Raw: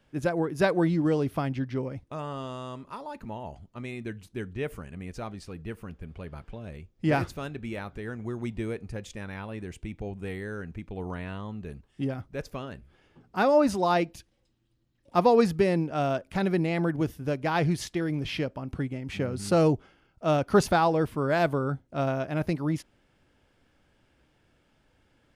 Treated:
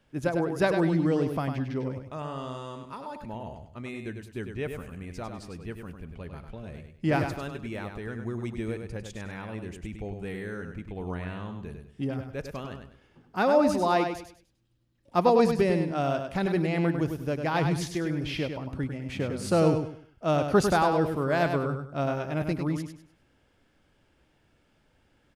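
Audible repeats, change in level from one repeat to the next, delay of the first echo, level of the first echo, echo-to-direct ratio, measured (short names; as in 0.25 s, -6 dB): 3, -10.5 dB, 0.1 s, -6.5 dB, -6.0 dB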